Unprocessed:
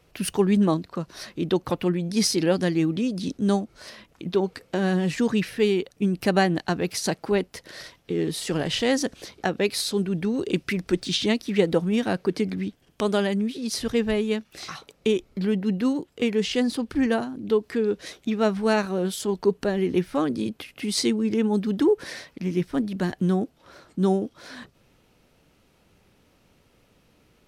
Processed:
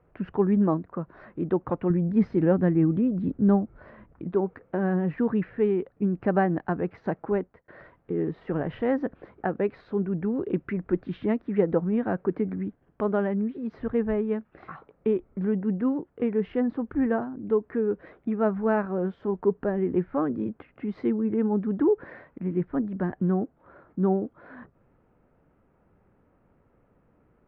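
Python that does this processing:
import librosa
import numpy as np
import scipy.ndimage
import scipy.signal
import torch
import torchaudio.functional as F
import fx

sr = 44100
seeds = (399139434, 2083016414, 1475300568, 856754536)

y = fx.low_shelf(x, sr, hz=180.0, db=10.0, at=(1.9, 4.25))
y = fx.edit(y, sr, fx.fade_out_span(start_s=7.2, length_s=0.48, curve='qsin'), tone=tone)
y = scipy.signal.sosfilt(scipy.signal.butter(4, 1600.0, 'lowpass', fs=sr, output='sos'), y)
y = F.gain(torch.from_numpy(y), -2.0).numpy()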